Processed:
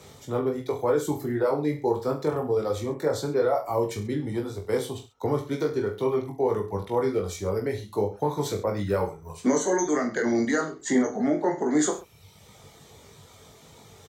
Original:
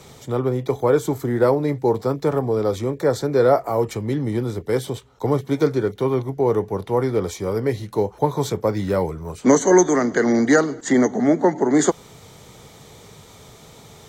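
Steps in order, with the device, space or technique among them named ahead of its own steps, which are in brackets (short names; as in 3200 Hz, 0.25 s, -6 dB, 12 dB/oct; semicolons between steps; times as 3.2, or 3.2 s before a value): HPF 94 Hz; car stereo with a boomy subwoofer (resonant low shelf 100 Hz +7 dB, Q 1.5; limiter -11 dBFS, peak gain reduction 7 dB); reverb removal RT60 1.1 s; reverse bouncing-ball echo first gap 20 ms, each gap 1.15×, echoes 5; gain -5 dB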